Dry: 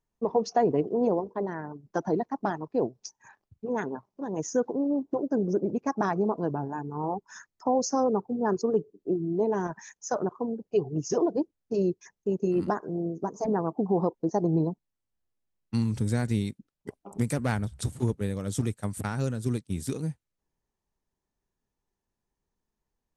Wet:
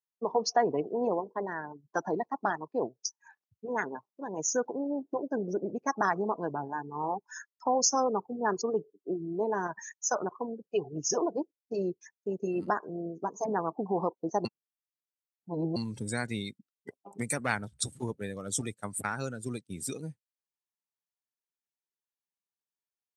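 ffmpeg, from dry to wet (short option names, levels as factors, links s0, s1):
-filter_complex "[0:a]asplit=3[s0][s1][s2];[s0]atrim=end=14.452[s3];[s1]atrim=start=14.448:end=15.762,asetpts=PTS-STARTPTS,areverse[s4];[s2]atrim=start=15.758[s5];[s3][s4]acrossfade=d=0.004:c1=hsin:c2=hsin[s6];[s6][s5]acrossfade=d=0.004:c1=hsin:c2=hsin,afftdn=nr=18:nf=-42,highpass=120,tiltshelf=f=800:g=-8.5"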